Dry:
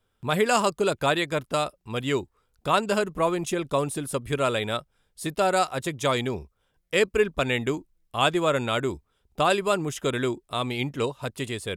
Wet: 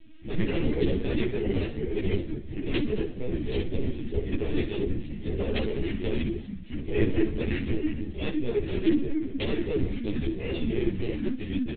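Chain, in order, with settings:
linear delta modulator 64 kbit/s, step −31.5 dBFS
low-pass filter 1,300 Hz 6 dB per octave
noise gate −37 dBFS, range −14 dB
dynamic equaliser 280 Hz, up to −4 dB, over −42 dBFS, Q 1.6
delay with pitch and tempo change per echo 89 ms, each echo −4 semitones, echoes 2
wrap-around overflow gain 11.5 dB
pitch-shifted copies added −5 semitones −1 dB, −4 semitones −5 dB
Butterworth band-reject 960 Hz, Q 0.53
flutter between parallel walls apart 10.7 metres, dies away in 0.38 s
linear-prediction vocoder at 8 kHz pitch kept
string-ensemble chorus

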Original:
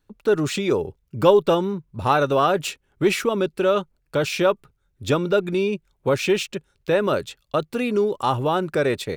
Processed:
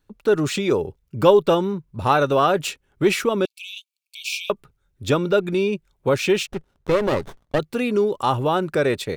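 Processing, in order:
0:03.45–0:04.50: linear-phase brick-wall high-pass 2,200 Hz
0:06.47–0:07.59: windowed peak hold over 17 samples
level +1 dB

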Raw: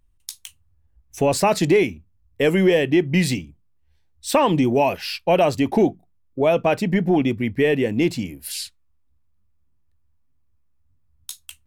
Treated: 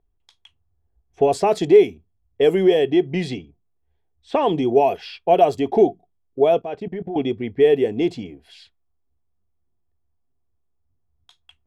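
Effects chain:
hollow resonant body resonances 420/700/3,300 Hz, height 14 dB, ringing for 30 ms
0:06.59–0:07.16: output level in coarse steps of 20 dB
low-pass that shuts in the quiet parts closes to 2,100 Hz, open at −5 dBFS
level −7.5 dB

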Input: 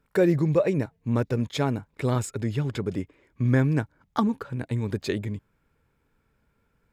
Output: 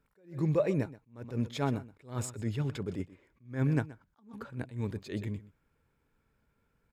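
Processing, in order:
single-tap delay 126 ms −18.5 dB
level that may rise only so fast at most 170 dB per second
level −4.5 dB

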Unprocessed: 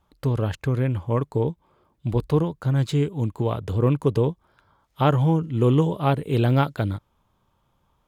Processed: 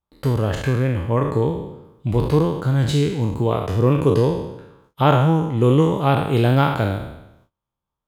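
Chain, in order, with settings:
peak hold with a decay on every bin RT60 0.88 s
noise gate −57 dBFS, range −23 dB
level +2.5 dB

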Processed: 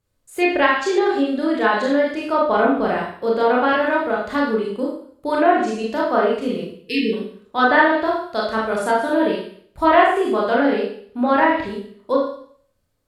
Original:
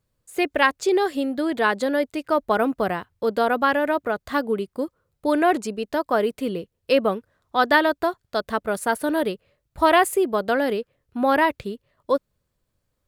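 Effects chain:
time-frequency box erased 0:06.79–0:07.14, 480–1,700 Hz
four-comb reverb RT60 0.56 s, combs from 25 ms, DRR −4 dB
treble cut that deepens with the level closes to 2,500 Hz, closed at −9 dBFS
level −1.5 dB

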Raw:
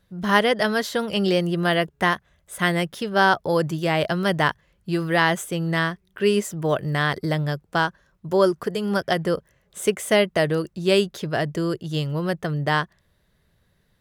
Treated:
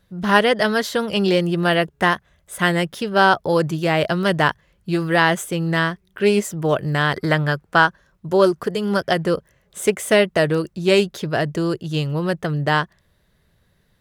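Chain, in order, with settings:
0:07.15–0:07.86: parametric band 1,500 Hz +12 dB → +5.5 dB 1.5 octaves
highs frequency-modulated by the lows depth 0.1 ms
level +3 dB

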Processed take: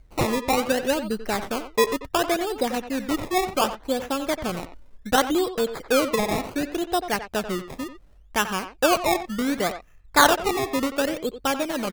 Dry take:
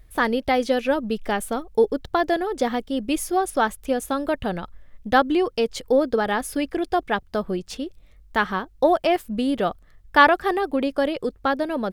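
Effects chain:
low-pass filter 11,000 Hz 24 dB per octave
sample-and-hold swept by an LFO 20×, swing 100% 0.68 Hz
far-end echo of a speakerphone 90 ms, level −10 dB
level −2 dB

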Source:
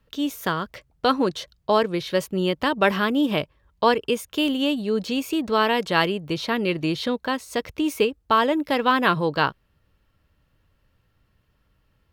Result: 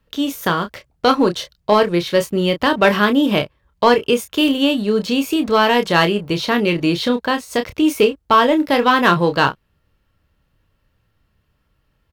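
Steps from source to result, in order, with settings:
leveller curve on the samples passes 1
double-tracking delay 29 ms −8 dB
level +2.5 dB

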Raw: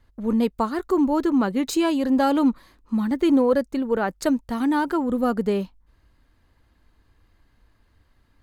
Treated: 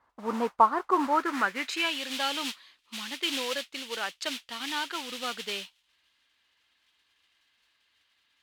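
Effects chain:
noise that follows the level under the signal 14 dB
band-pass filter sweep 1,000 Hz → 3,100 Hz, 0:00.93–0:02.02
level +7.5 dB

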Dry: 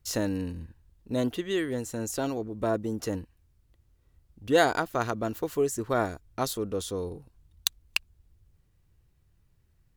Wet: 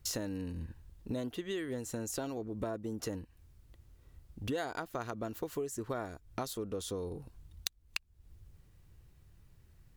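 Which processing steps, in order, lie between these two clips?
downward compressor 6 to 1, threshold −41 dBFS, peak gain reduction 22 dB
level +5.5 dB

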